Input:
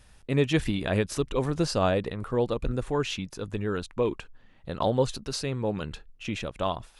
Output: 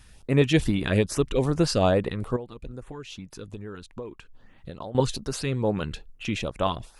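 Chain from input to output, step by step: 2.36–4.95 compressor 5:1, threshold -40 dBFS, peak gain reduction 17.5 dB; LFO notch saw up 2.4 Hz 460–6800 Hz; gain +4 dB

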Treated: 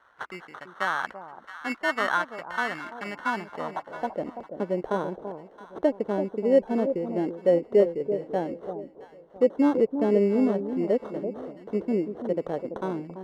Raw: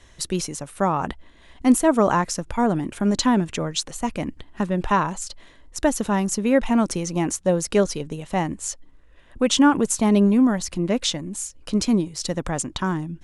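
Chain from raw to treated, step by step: treble ducked by the level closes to 1100 Hz, closed at -17.5 dBFS; 9.95–11.85 dynamic EQ 1600 Hz, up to +6 dB, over -41 dBFS, Q 0.9; sample-and-hold 18×; band-pass sweep 1400 Hz -> 470 Hz, 3.14–4.35; echo with dull and thin repeats by turns 0.335 s, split 910 Hz, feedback 52%, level -8.5 dB; gain +3.5 dB

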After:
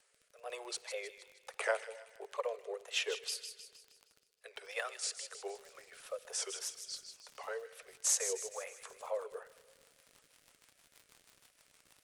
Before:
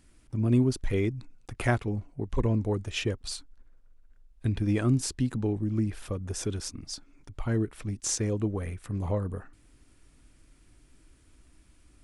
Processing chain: steep high-pass 450 Hz 96 dB/oct; crackle 19/s -42 dBFS, from 5.42 s 80/s; wow and flutter 140 cents; rotary speaker horn 1.2 Hz, later 6.3 Hz, at 8.21; thin delay 0.156 s, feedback 48%, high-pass 2700 Hz, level -7.5 dB; shoebox room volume 3200 m³, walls mixed, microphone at 0.31 m

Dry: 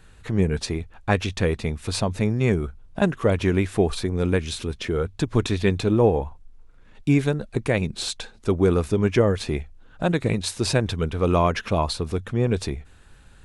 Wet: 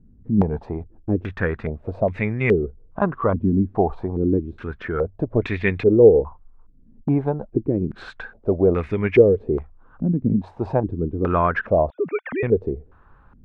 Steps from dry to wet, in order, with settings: 11.9–12.43 sine-wave speech; stepped low-pass 2.4 Hz 240–2100 Hz; gain -2 dB

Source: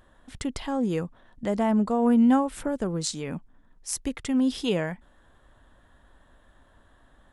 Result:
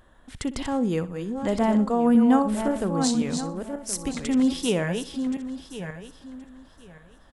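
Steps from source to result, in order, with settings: regenerating reverse delay 0.537 s, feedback 45%, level -6.5 dB; on a send: feedback echo 62 ms, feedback 33%, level -16 dB; on the sum: gain +1.5 dB

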